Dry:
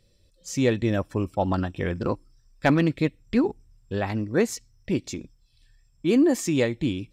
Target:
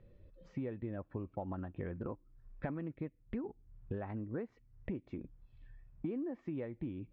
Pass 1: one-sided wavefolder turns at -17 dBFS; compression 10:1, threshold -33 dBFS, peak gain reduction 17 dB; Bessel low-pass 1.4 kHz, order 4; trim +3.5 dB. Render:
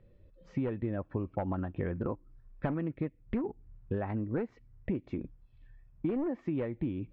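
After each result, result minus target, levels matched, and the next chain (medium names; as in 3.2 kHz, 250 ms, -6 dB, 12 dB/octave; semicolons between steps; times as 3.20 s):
one-sided wavefolder: distortion +32 dB; compression: peak gain reduction -7.5 dB
one-sided wavefolder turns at -11 dBFS; compression 10:1, threshold -33 dBFS, peak gain reduction 17.5 dB; Bessel low-pass 1.4 kHz, order 4; trim +3.5 dB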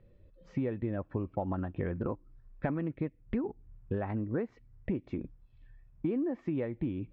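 compression: peak gain reduction -7 dB
one-sided wavefolder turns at -11 dBFS; compression 10:1, threshold -41 dBFS, peak gain reduction 24.5 dB; Bessel low-pass 1.4 kHz, order 4; trim +3.5 dB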